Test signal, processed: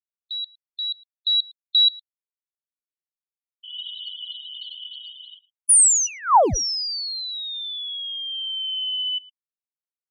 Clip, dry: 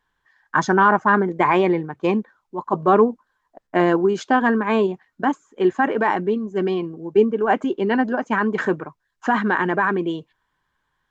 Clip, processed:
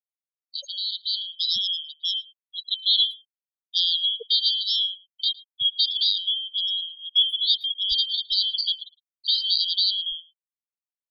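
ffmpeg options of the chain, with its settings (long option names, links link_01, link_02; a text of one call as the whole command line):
ffmpeg -i in.wav -filter_complex "[0:a]afftfilt=real='real(if(lt(b,272),68*(eq(floor(b/68),0)*2+eq(floor(b/68),1)*3+eq(floor(b/68),2)*0+eq(floor(b/68),3)*1)+mod(b,68),b),0)':imag='imag(if(lt(b,272),68*(eq(floor(b/68),0)*2+eq(floor(b/68),1)*3+eq(floor(b/68),2)*0+eq(floor(b/68),3)*1)+mod(b,68),b),0)':win_size=2048:overlap=0.75,afftfilt=real='re*gte(hypot(re,im),0.1)':imag='im*gte(hypot(re,im),0.1)':win_size=1024:overlap=0.75,firequalizer=gain_entry='entry(100,0);entry(170,-8);entry(250,-4);entry(450,2);entry(940,10);entry(1800,-20);entry(4900,-7);entry(8200,7)':delay=0.05:min_phase=1,dynaudnorm=framelen=920:gausssize=3:maxgain=17dB,asplit=2[link_01][link_02];[link_02]adelay=110,highpass=300,lowpass=3400,asoftclip=type=hard:threshold=-10dB,volume=-19dB[link_03];[link_01][link_03]amix=inputs=2:normalize=0,volume=-6.5dB" out.wav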